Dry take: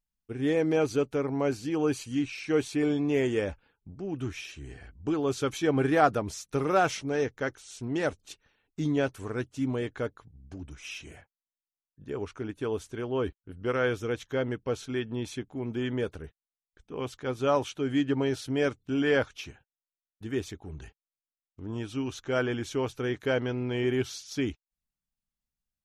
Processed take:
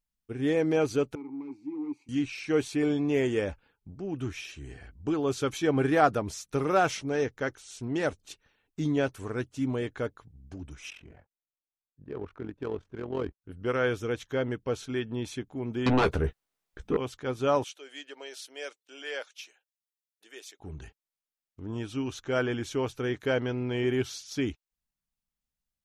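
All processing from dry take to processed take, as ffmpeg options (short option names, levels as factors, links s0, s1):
-filter_complex "[0:a]asettb=1/sr,asplit=3[s0][s1][s2];[s0]atrim=end=1.154[s3];[s1]atrim=start=1.15:end=2.09,asetpts=PTS-STARTPTS,afade=t=in:d=0.004:c=qsin,afade=t=out:st=0.936:d=0.004:c=qsin,volume=23.7,asoftclip=hard,volume=0.0422,asplit=3[s4][s5][s6];[s4]bandpass=f=300:t=q:w=8,volume=1[s7];[s5]bandpass=f=870:t=q:w=8,volume=0.501[s8];[s6]bandpass=f=2240:t=q:w=8,volume=0.355[s9];[s7][s8][s9]amix=inputs=3:normalize=0,equalizer=f=3100:w=2.5:g=-12[s10];[s2]atrim=start=2.086[s11];[s3][s10]acrossfade=d=0.004:c1=hsin:c2=qsin[s12];[s12][s11]acrossfade=d=0.004:c1=qsin:c2=hsin,asettb=1/sr,asplit=3[s13][s14][s15];[s13]atrim=end=10.904[s16];[s14]atrim=start=10.9:end=13.42,asetpts=PTS-STARTPTS,afade=t=in:d=0.004:c=qsin,afade=t=out:st=2.516:d=0.004:c=qsin,tremolo=f=44:d=0.667,adynamicsmooth=sensitivity=6.5:basefreq=1300[s17];[s15]atrim=start=13.416[s18];[s16][s17]acrossfade=d=0.004:c1=hsin:c2=qsin[s19];[s19][s18]acrossfade=d=0.004:c1=qsin:c2=hsin,asettb=1/sr,asplit=3[s20][s21][s22];[s20]atrim=end=15.864[s23];[s21]atrim=start=15.86:end=16.97,asetpts=PTS-STARTPTS,afade=t=in:d=0.004:c=qsin,afade=t=out:st=1.106:d=0.004:c=qsin,highshelf=f=2600:g=-7.5,aeval=exprs='0.106*sin(PI/2*3.55*val(0)/0.106)':c=same,asplit=2[s24][s25];[s25]adelay=15,volume=0.316[s26];[s24][s26]amix=inputs=2:normalize=0,atrim=end_sample=48951[s27];[s22]atrim=start=16.966[s28];[s23][s27]acrossfade=d=0.004:c1=hsin:c2=qsin[s29];[s29][s28]acrossfade=d=0.004:c1=qsin:c2=hsin,asettb=1/sr,asplit=3[s30][s31][s32];[s30]atrim=end=17.644[s33];[s31]atrim=start=17.64:end=20.6,asetpts=PTS-STARTPTS,afade=t=in:d=0.004:c=qsin,afade=t=out:st=2.956:d=0.004:c=qsin,highpass=f=560:w=0.5412,highpass=f=560:w=1.3066,equalizer=f=1000:w=0.63:g=-12.5[s34];[s32]atrim=start=20.596[s35];[s33][s34]acrossfade=d=0.004:c1=hsin:c2=qsin[s36];[s36][s35]acrossfade=d=0.004:c1=qsin:c2=hsin"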